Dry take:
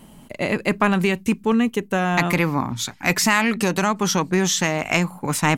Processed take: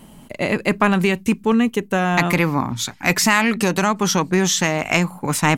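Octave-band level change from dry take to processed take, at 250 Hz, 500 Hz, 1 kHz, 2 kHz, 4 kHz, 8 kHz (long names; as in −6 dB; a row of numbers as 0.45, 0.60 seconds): +2.0, +2.0, +2.0, +2.0, +2.0, +2.0 decibels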